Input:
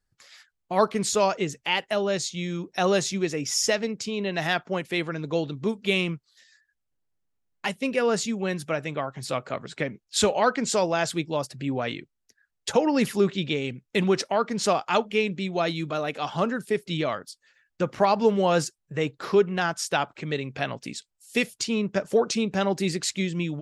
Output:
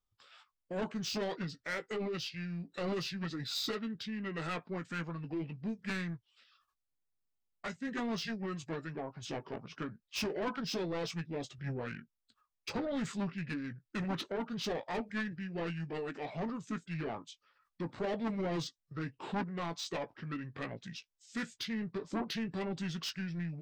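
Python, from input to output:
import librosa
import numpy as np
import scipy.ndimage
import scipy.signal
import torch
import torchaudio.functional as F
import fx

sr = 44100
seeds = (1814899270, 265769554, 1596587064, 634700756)

y = fx.doubler(x, sr, ms=18.0, db=-10)
y = 10.0 ** (-21.5 / 20.0) * np.tanh(y / 10.0 ** (-21.5 / 20.0))
y = fx.formant_shift(y, sr, semitones=-6)
y = y * 10.0 ** (-9.0 / 20.0)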